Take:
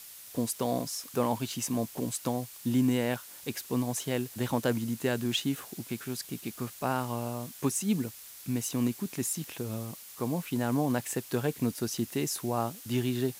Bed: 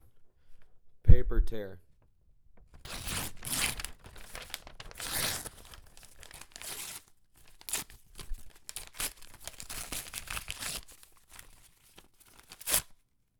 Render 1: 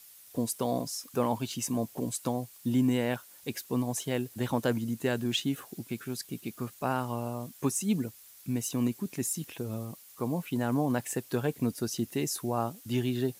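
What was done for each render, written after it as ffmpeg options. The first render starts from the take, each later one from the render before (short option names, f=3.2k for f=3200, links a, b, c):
-af "afftdn=nr=8:nf=-48"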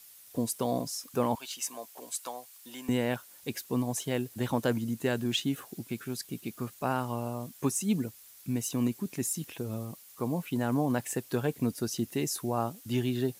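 -filter_complex "[0:a]asettb=1/sr,asplit=3[a][b][c];[a]atrim=end=1.354[d];[b]atrim=start=1.35:end=2.89,asetpts=PTS-STARTPTS,afade=t=in:d=0.004:c=qsin,afade=t=out:st=1.536:d=0.004:c=qsin,highpass=820[e];[c]atrim=start=2.886[f];[d][e]acrossfade=d=0.004:c1=hsin:c2=qsin[g];[g][f]acrossfade=d=0.004:c1=qsin:c2=hsin"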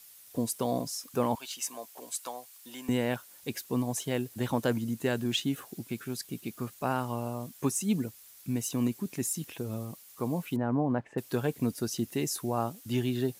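-filter_complex "[0:a]asettb=1/sr,asplit=3[a][b][c];[a]atrim=end=10.564[d];[b]atrim=start=10.56:end=11.18,asetpts=PTS-STARTPTS,afade=t=in:d=0.004:c=qsin,afade=t=out:st=0.616:d=0.004:c=qsin,lowpass=1.4k[e];[c]atrim=start=11.176[f];[d][e]acrossfade=d=0.004:c1=hsin:c2=qsin[g];[g][f]acrossfade=d=0.004:c1=qsin:c2=hsin"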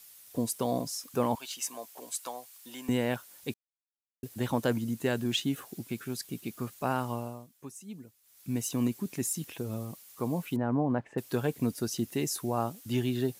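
-filter_complex "[0:a]asplit=5[a][b][c][d][e];[a]atrim=end=3.54,asetpts=PTS-STARTPTS,afade=t=out:st=3.536:d=0.004:c=hsin[f];[b]atrim=start=3.54:end=4.23,asetpts=PTS-STARTPTS,volume=0[g];[c]atrim=start=4.23:end=7.47,asetpts=PTS-STARTPTS,afade=t=in:d=0.004:c=hsin,afade=t=out:st=2.89:d=0.35:silence=0.16788[h];[d]atrim=start=7.47:end=8.22,asetpts=PTS-STARTPTS,volume=-15.5dB[i];[e]atrim=start=8.22,asetpts=PTS-STARTPTS,afade=t=in:d=0.35:silence=0.16788[j];[f][g][h][i][j]concat=n=5:v=0:a=1"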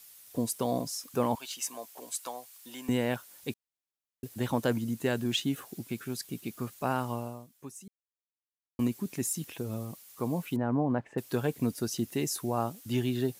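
-filter_complex "[0:a]asplit=3[a][b][c];[a]atrim=end=7.88,asetpts=PTS-STARTPTS,afade=t=out:st=7.876:d=0.004:c=hsin[d];[b]atrim=start=7.88:end=8.79,asetpts=PTS-STARTPTS,volume=0[e];[c]atrim=start=8.79,asetpts=PTS-STARTPTS,afade=t=in:d=0.004:c=hsin[f];[d][e][f]concat=n=3:v=0:a=1"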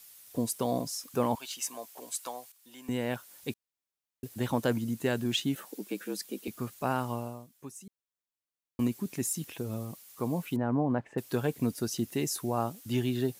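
-filter_complex "[0:a]asettb=1/sr,asplit=3[a][b][c];[a]atrim=end=5.554[d];[b]atrim=start=5.55:end=6.48,asetpts=PTS-STARTPTS,afade=t=in:d=0.004:c=qsin,afade=t=out:st=0.926:d=0.004:c=qsin,afreqshift=83[e];[c]atrim=start=6.476[f];[d][e]acrossfade=d=0.004:c1=hsin:c2=qsin[g];[g][f]acrossfade=d=0.004:c1=qsin:c2=hsin,asplit=2[h][i];[h]atrim=end=2.52,asetpts=PTS-STARTPTS,afade=t=out:st=2.516:d=0.004:c=hsin:silence=0.237137[j];[i]atrim=start=2.52,asetpts=PTS-STARTPTS,afade=t=in:d=0.82:silence=0.237137[k];[j][k]concat=n=2:v=0:a=1"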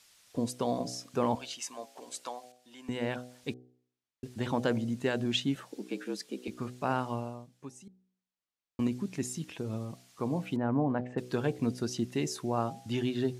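-af "lowpass=6.1k,bandreject=f=62.19:t=h:w=4,bandreject=f=124.38:t=h:w=4,bandreject=f=186.57:t=h:w=4,bandreject=f=248.76:t=h:w=4,bandreject=f=310.95:t=h:w=4,bandreject=f=373.14:t=h:w=4,bandreject=f=435.33:t=h:w=4,bandreject=f=497.52:t=h:w=4,bandreject=f=559.71:t=h:w=4,bandreject=f=621.9:t=h:w=4,bandreject=f=684.09:t=h:w=4,bandreject=f=746.28:t=h:w=4,bandreject=f=808.47:t=h:w=4"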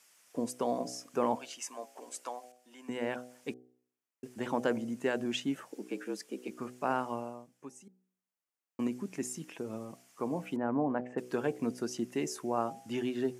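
-af "highpass=240,equalizer=f=3.9k:w=2.2:g=-10.5"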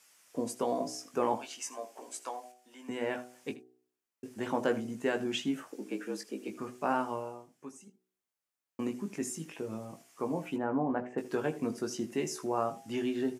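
-filter_complex "[0:a]asplit=2[a][b];[b]adelay=19,volume=-6dB[c];[a][c]amix=inputs=2:normalize=0,aecho=1:1:78:0.141"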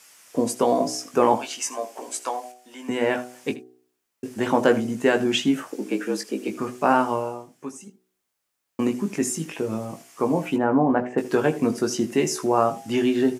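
-af "volume=11.5dB"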